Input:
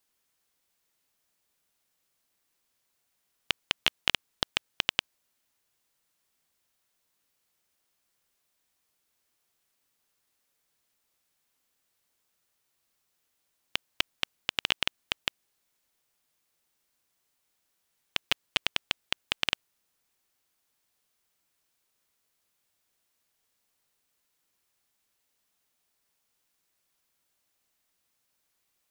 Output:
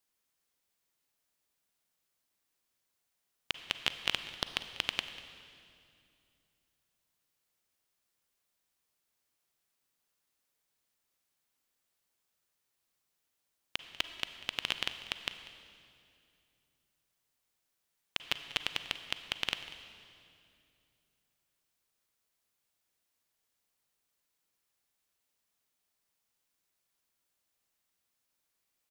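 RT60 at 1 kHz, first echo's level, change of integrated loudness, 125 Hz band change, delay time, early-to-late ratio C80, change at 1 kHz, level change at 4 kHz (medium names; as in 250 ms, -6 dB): 2.3 s, -18.5 dB, -5.0 dB, -4.5 dB, 193 ms, 10.5 dB, -5.0 dB, -5.0 dB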